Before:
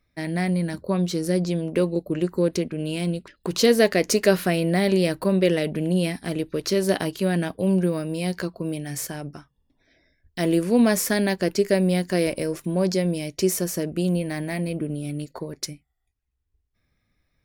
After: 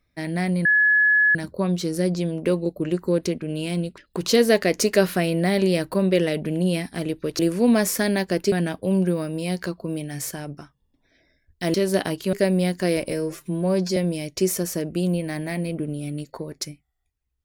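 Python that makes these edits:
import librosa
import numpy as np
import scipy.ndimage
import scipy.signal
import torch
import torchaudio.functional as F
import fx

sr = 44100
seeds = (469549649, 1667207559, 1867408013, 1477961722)

y = fx.edit(x, sr, fx.insert_tone(at_s=0.65, length_s=0.7, hz=1700.0, db=-14.0),
    fx.swap(start_s=6.69, length_s=0.59, other_s=10.5, other_length_s=1.13),
    fx.stretch_span(start_s=12.41, length_s=0.57, factor=1.5), tone=tone)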